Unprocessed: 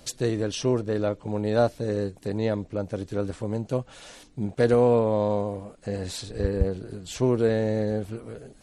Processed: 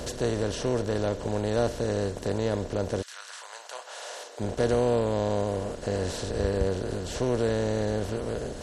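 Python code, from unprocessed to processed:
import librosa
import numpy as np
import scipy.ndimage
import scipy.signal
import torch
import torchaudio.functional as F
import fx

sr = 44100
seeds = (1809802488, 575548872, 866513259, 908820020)

y = fx.bin_compress(x, sr, power=0.4)
y = fx.highpass(y, sr, hz=fx.line((3.01, 1400.0), (4.39, 490.0)), slope=24, at=(3.01, 4.39), fade=0.02)
y = y * librosa.db_to_amplitude(-7.5)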